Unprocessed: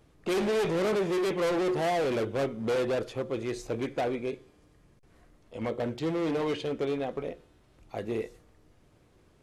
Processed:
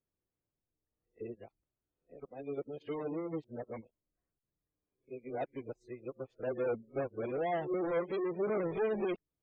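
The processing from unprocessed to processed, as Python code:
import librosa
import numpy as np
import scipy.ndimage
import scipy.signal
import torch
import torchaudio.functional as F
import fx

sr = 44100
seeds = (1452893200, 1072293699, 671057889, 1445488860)

y = x[::-1].copy()
y = fx.spec_gate(y, sr, threshold_db=-25, keep='strong')
y = fx.upward_expand(y, sr, threshold_db=-43.0, expansion=2.5)
y = F.gain(torch.from_numpy(y), -3.5).numpy()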